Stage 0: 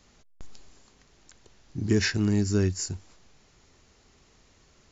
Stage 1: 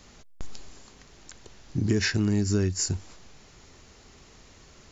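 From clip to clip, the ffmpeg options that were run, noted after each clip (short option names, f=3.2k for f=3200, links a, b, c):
-af "acompressor=threshold=-30dB:ratio=4,volume=7.5dB"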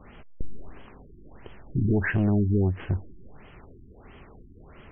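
-af "aeval=exprs='(tanh(15.8*val(0)+0.25)-tanh(0.25))/15.8':c=same,afftfilt=real='re*lt(b*sr/1024,380*pow(3400/380,0.5+0.5*sin(2*PI*1.5*pts/sr)))':imag='im*lt(b*sr/1024,380*pow(3400/380,0.5+0.5*sin(2*PI*1.5*pts/sr)))':win_size=1024:overlap=0.75,volume=6dB"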